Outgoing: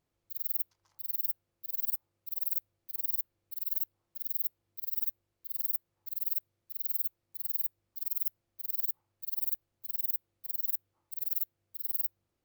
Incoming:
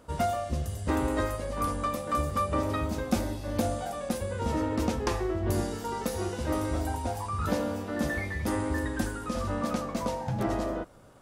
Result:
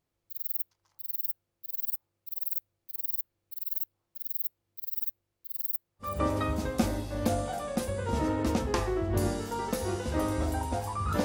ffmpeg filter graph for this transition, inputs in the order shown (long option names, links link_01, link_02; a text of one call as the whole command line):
ffmpeg -i cue0.wav -i cue1.wav -filter_complex "[0:a]apad=whole_dur=11.24,atrim=end=11.24,atrim=end=6.21,asetpts=PTS-STARTPTS[link_01];[1:a]atrim=start=2.32:end=7.57,asetpts=PTS-STARTPTS[link_02];[link_01][link_02]acrossfade=duration=0.22:curve1=tri:curve2=tri" out.wav